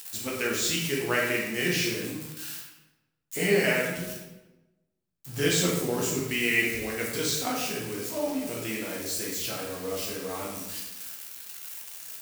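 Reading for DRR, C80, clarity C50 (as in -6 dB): -3.5 dB, 5.0 dB, 2.0 dB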